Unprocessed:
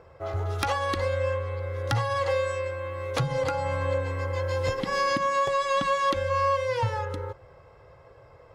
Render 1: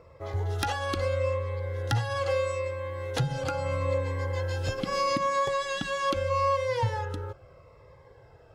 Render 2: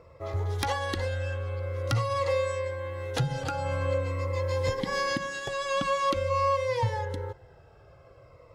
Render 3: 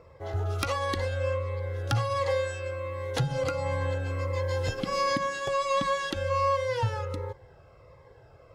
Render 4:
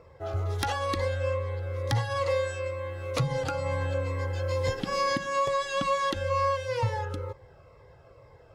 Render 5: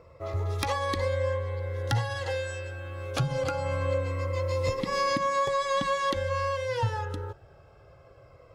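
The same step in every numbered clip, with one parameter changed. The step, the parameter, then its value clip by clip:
cascading phaser, rate: 0.78, 0.47, 1.4, 2.2, 0.22 Hz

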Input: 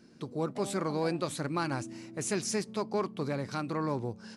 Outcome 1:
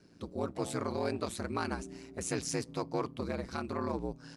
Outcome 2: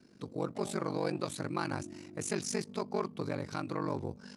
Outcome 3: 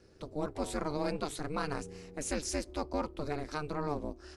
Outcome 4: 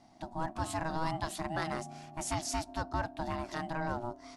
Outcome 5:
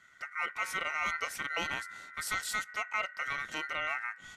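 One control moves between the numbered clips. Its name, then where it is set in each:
ring modulator, frequency: 60, 24, 150, 480, 1700 Hz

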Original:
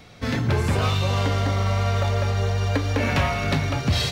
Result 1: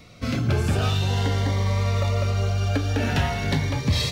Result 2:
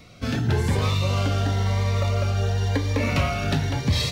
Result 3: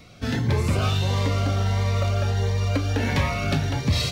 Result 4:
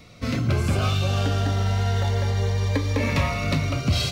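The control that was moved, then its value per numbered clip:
cascading phaser, rate: 0.47, 0.97, 1.5, 0.29 Hz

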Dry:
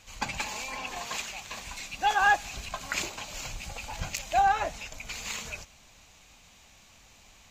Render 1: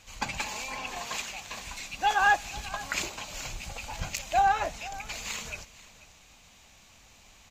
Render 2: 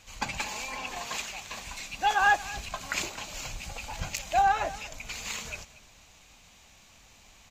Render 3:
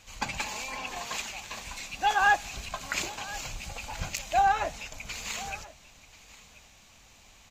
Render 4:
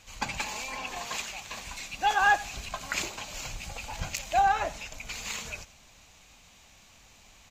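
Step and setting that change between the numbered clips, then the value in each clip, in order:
echo, time: 489, 235, 1034, 88 ms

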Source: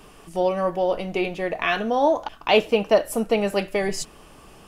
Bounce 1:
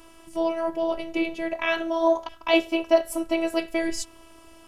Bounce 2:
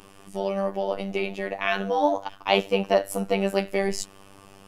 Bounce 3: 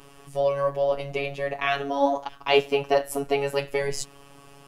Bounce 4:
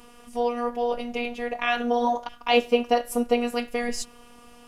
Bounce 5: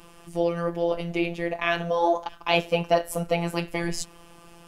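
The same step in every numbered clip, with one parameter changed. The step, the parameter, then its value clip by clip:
robotiser, frequency: 330, 98, 140, 240, 170 Hz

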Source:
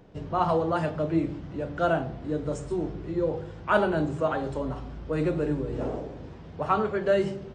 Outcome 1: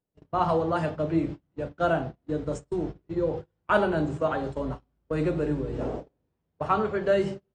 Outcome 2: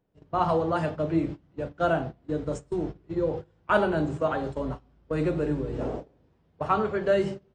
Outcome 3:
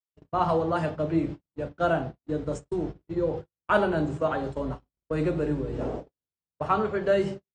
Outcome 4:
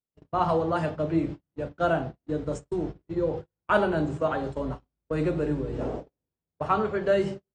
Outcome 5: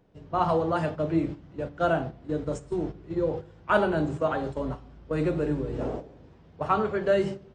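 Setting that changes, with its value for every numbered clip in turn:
gate, range: -35, -22, -60, -47, -10 dB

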